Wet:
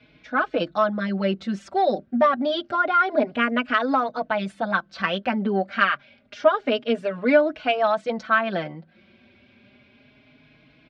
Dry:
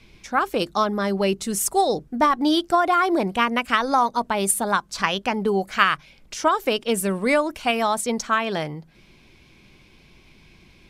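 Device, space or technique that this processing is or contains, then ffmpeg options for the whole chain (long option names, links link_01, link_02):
barber-pole flanger into a guitar amplifier: -filter_complex "[0:a]asplit=2[link_01][link_02];[link_02]adelay=4.3,afreqshift=0.28[link_03];[link_01][link_03]amix=inputs=2:normalize=1,asoftclip=type=tanh:threshold=-9.5dB,highpass=98,equalizer=frequency=250:width_type=q:width=4:gain=7,equalizer=frequency=400:width_type=q:width=4:gain=-3,equalizer=frequency=610:width_type=q:width=4:gain=10,equalizer=frequency=960:width_type=q:width=4:gain=-5,equalizer=frequency=1500:width_type=q:width=4:gain=7,lowpass=frequency=3900:width=0.5412,lowpass=frequency=3900:width=1.3066"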